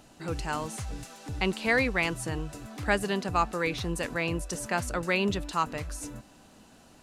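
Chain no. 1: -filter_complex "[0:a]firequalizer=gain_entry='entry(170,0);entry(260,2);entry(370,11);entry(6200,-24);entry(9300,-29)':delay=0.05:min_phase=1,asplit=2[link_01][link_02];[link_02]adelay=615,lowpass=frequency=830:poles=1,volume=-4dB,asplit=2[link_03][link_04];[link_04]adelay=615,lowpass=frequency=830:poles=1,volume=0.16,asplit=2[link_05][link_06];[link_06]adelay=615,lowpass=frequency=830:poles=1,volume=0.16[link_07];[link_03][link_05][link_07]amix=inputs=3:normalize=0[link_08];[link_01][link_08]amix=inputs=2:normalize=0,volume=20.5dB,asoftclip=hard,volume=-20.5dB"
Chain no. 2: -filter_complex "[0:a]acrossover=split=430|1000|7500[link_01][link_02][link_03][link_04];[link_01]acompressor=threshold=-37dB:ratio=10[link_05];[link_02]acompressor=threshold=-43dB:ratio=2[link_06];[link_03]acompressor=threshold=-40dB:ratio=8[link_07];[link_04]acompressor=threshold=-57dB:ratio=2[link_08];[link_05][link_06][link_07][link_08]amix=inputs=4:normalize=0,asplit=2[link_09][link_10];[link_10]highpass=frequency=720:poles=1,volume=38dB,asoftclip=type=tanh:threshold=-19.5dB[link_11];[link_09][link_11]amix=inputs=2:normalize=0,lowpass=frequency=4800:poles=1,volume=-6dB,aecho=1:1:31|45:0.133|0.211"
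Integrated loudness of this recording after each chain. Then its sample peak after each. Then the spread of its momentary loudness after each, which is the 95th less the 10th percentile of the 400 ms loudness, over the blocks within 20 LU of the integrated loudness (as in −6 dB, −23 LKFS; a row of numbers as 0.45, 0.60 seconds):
−26.5, −26.0 LKFS; −20.5, −19.0 dBFS; 8, 2 LU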